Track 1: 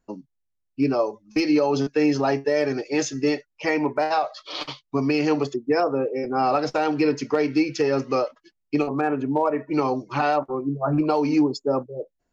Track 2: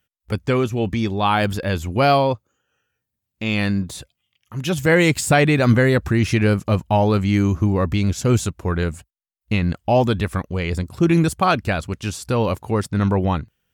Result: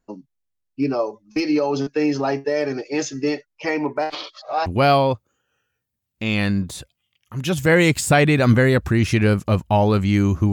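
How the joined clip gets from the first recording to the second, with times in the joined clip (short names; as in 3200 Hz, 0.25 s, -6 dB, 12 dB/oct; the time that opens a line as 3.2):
track 1
4.1–4.66 reverse
4.66 switch to track 2 from 1.86 s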